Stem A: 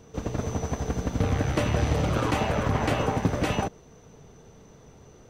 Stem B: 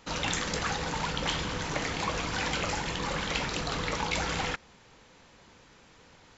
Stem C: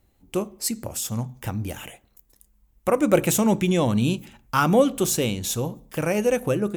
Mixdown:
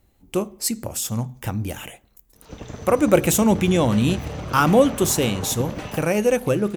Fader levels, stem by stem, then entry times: −6.5, −18.0, +2.5 decibels; 2.35, 2.35, 0.00 seconds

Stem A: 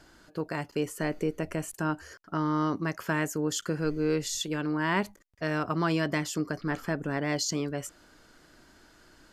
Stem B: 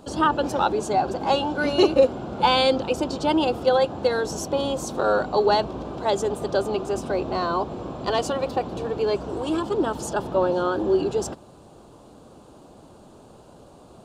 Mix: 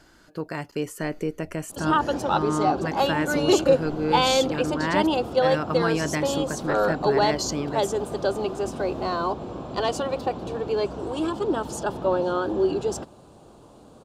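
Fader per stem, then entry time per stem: +1.5, −1.5 decibels; 0.00, 1.70 seconds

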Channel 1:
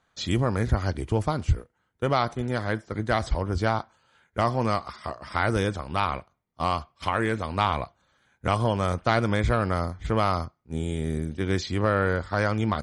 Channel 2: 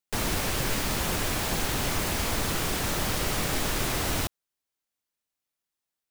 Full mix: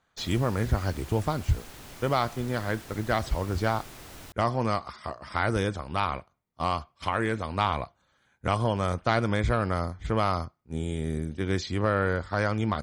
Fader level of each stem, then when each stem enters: −2.0, −17.5 decibels; 0.00, 0.05 seconds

